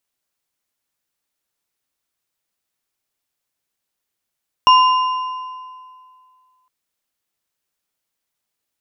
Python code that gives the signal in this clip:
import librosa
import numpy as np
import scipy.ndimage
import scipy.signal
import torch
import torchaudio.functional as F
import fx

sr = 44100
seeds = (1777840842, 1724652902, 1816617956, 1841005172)

y = fx.strike_metal(sr, length_s=2.01, level_db=-6.0, body='bar', hz=1020.0, decay_s=2.18, tilt_db=8, modes=3)